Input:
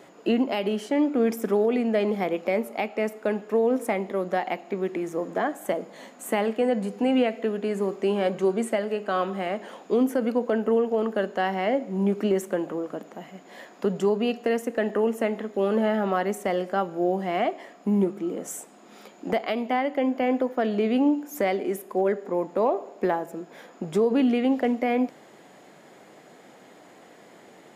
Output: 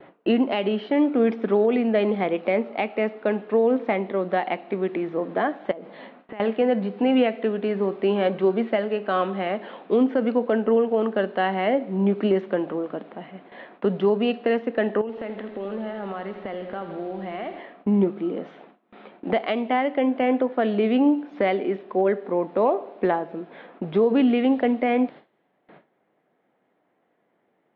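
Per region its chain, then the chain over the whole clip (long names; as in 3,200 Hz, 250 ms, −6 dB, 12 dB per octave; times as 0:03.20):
0:05.71–0:06.40: low-pass filter 9,300 Hz + downward compressor 16 to 1, threshold −35 dBFS
0:15.01–0:17.60: downward compressor 4 to 1, threshold −32 dBFS + feedback echo at a low word length 82 ms, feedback 80%, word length 8 bits, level −10 dB
whole clip: Butterworth low-pass 4,000 Hz 48 dB per octave; noise gate with hold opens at −39 dBFS; low-pass that shuts in the quiet parts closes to 2,300 Hz, open at −23.5 dBFS; level +2.5 dB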